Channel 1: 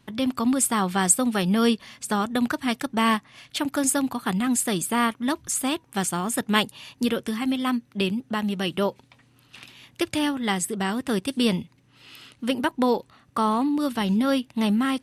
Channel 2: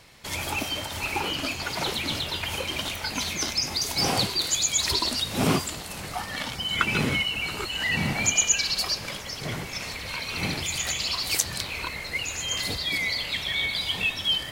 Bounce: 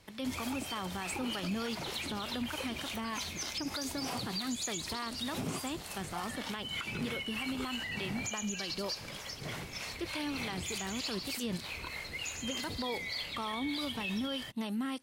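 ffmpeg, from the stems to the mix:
-filter_complex "[0:a]acrossover=split=4000[a][b];[b]acompressor=threshold=-45dB:ratio=4:attack=1:release=60[c];[a][c]amix=inputs=2:normalize=0,bass=f=250:g=-3,treble=f=4k:g=7,volume=-8dB[d];[1:a]acompressor=threshold=-27dB:ratio=3,volume=-5.5dB[e];[d][e]amix=inputs=2:normalize=0,acrossover=split=450[f][g];[f]aeval=exprs='val(0)*(1-0.5/2+0.5/2*cos(2*PI*3.3*n/s))':c=same[h];[g]aeval=exprs='val(0)*(1-0.5/2-0.5/2*cos(2*PI*3.3*n/s))':c=same[i];[h][i]amix=inputs=2:normalize=0,alimiter=level_in=3dB:limit=-24dB:level=0:latency=1:release=48,volume=-3dB"

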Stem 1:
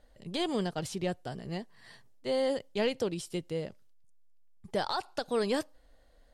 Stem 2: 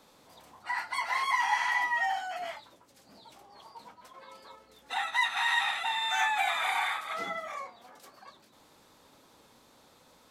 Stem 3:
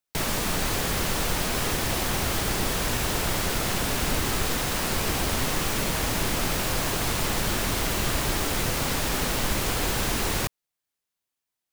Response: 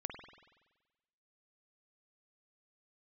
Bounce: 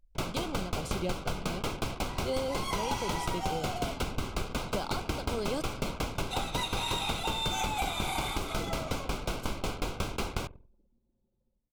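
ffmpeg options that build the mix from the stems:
-filter_complex "[0:a]tremolo=f=0.87:d=0.54,volume=1.5dB[a];[1:a]equalizer=f=1.5k:t=o:w=2.1:g=-15,dynaudnorm=f=720:g=3:m=12dB,adelay=1400,volume=-3.5dB[b];[2:a]aemphasis=mode=reproduction:type=50kf,aeval=exprs='val(0)*pow(10,-21*if(lt(mod(5.5*n/s,1),2*abs(5.5)/1000),1-mod(5.5*n/s,1)/(2*abs(5.5)/1000),(mod(5.5*n/s,1)-2*abs(5.5)/1000)/(1-2*abs(5.5)/1000))/20)':c=same,volume=0dB,asplit=2[c][d];[d]volume=-5dB[e];[3:a]atrim=start_sample=2205[f];[e][f]afir=irnorm=-1:irlink=0[g];[a][b][c][g]amix=inputs=4:normalize=0,anlmdn=0.158,asuperstop=centerf=1800:order=4:qfactor=3.6,acompressor=threshold=-28dB:ratio=4"

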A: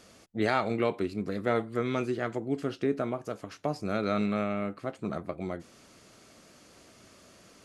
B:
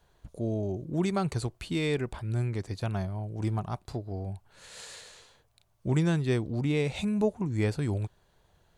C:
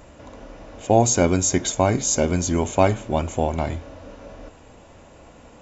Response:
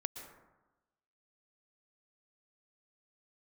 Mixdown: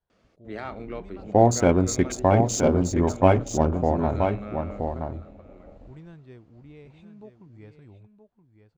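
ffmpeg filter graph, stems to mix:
-filter_complex "[0:a]adelay=100,volume=-8dB,afade=t=out:st=4.89:d=0.23:silence=0.316228,asplit=2[a][b];[b]volume=-19dB[c];[1:a]volume=-19.5dB,asplit=2[d][e];[e]volume=-10dB[f];[2:a]afwtdn=0.0282,adelay=450,volume=-0.5dB,asplit=2[g][h];[h]volume=-6dB[i];[c][f][i]amix=inputs=3:normalize=0,aecho=0:1:973:1[j];[a][d][g][j]amix=inputs=4:normalize=0,highshelf=f=4.5k:g=-8,adynamicsmooth=sensitivity=6.5:basefreq=5.5k"

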